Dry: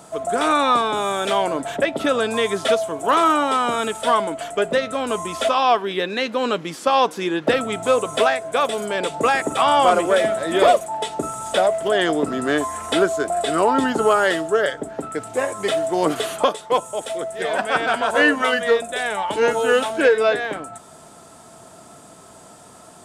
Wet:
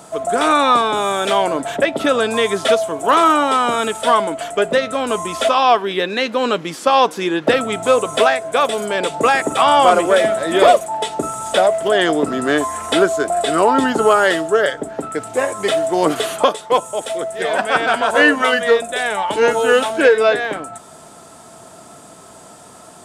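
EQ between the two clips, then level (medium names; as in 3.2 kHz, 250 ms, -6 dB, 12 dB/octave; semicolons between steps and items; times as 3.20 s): bass shelf 150 Hz -3 dB; +4.0 dB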